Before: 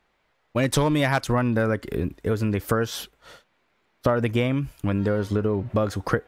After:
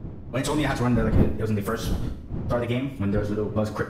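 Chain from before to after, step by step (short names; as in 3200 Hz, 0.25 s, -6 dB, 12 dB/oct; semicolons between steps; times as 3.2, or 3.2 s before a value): wind noise 170 Hz -26 dBFS; plain phase-vocoder stretch 0.62×; Schroeder reverb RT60 0.66 s, combs from 29 ms, DRR 7.5 dB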